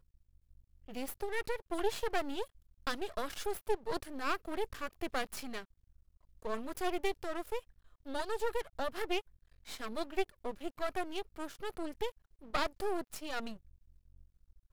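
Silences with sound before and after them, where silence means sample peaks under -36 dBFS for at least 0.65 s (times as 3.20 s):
5.61–6.45 s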